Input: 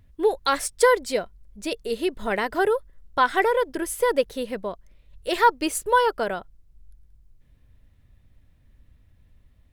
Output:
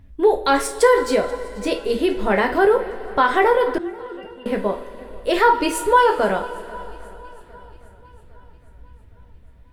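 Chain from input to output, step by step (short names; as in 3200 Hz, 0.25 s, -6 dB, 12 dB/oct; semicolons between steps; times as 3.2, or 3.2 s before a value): high shelf 3000 Hz -9 dB; reverb, pre-delay 8 ms, DRR 2.5 dB; in parallel at +2 dB: limiter -17.5 dBFS, peak gain reduction 11.5 dB; 3.78–4.46 on the sum: octave resonator F, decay 0.17 s; swung echo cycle 0.808 s, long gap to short 1.5:1, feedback 42%, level -23 dB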